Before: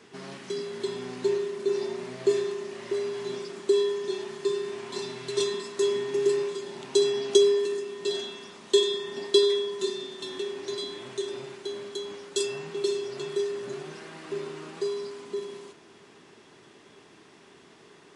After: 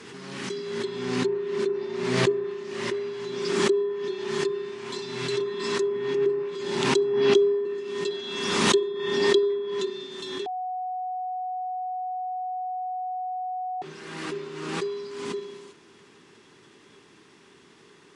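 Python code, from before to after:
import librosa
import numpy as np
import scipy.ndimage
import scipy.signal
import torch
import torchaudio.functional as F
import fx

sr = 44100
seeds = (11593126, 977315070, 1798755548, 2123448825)

y = fx.edit(x, sr, fx.bleep(start_s=10.46, length_s=3.36, hz=738.0, db=-22.0), tone=tone)
y = fx.peak_eq(y, sr, hz=660.0, db=-9.0, octaves=0.49)
y = fx.env_lowpass_down(y, sr, base_hz=1200.0, full_db=-22.0)
y = fx.pre_swell(y, sr, db_per_s=36.0)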